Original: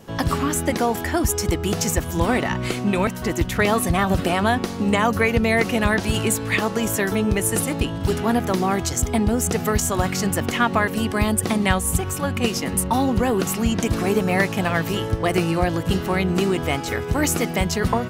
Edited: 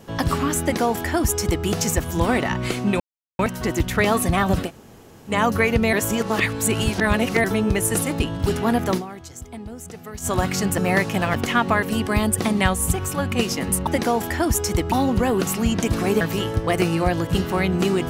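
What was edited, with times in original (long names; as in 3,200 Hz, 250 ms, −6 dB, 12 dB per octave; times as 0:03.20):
0:00.61–0:01.66: duplicate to 0:12.92
0:03.00: splice in silence 0.39 s
0:04.27–0:04.93: fill with room tone, crossfade 0.10 s
0:05.54–0:07.05: reverse
0:08.58–0:09.88: duck −15.5 dB, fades 0.33 s exponential
0:14.21–0:14.77: move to 0:10.39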